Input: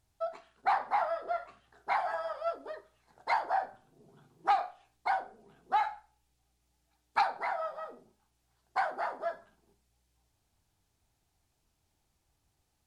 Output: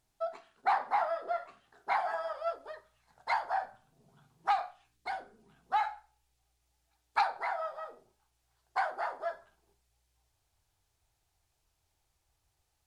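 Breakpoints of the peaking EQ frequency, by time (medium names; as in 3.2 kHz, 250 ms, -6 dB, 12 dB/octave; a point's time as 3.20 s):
peaking EQ -12 dB 1.1 oct
2.10 s 74 Hz
2.74 s 350 Hz
4.69 s 350 Hz
5.12 s 1.1 kHz
5.92 s 220 Hz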